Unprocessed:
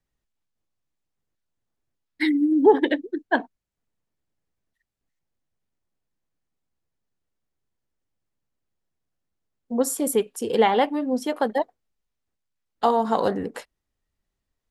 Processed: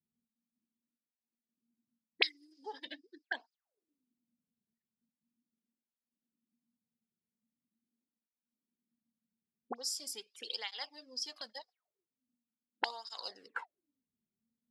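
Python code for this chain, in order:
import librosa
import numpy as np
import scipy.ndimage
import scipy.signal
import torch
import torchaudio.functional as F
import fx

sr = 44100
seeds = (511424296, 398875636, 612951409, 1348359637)

y = fx.bass_treble(x, sr, bass_db=12, treble_db=-4, at=(2.86, 3.39))
y = fx.auto_wah(y, sr, base_hz=230.0, top_hz=5000.0, q=19.0, full_db=-23.0, direction='up')
y = fx.flanger_cancel(y, sr, hz=0.42, depth_ms=3.9)
y = y * 10.0 ** (18.0 / 20.0)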